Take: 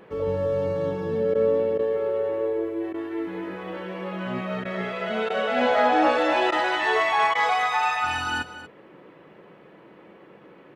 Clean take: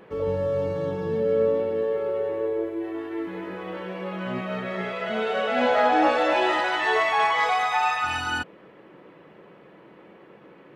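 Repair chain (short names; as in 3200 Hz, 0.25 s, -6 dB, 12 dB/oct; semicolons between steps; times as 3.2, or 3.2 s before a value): interpolate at 1.34/1.78/2.93/4.64/5.29/6.51/7.34, 10 ms; inverse comb 0.234 s -13.5 dB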